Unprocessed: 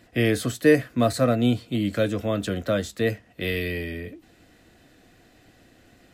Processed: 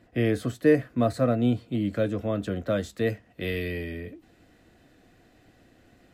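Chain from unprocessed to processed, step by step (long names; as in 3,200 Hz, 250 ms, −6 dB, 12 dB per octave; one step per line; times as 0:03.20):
high-shelf EQ 2,200 Hz −11 dB, from 0:02.70 −5.5 dB
level −2 dB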